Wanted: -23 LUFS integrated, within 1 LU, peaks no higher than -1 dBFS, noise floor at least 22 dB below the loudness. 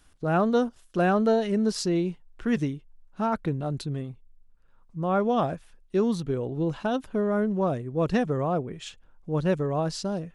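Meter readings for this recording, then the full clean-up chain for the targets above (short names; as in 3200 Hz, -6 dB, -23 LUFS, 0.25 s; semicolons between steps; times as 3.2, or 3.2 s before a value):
loudness -27.0 LUFS; peak -11.5 dBFS; loudness target -23.0 LUFS
-> gain +4 dB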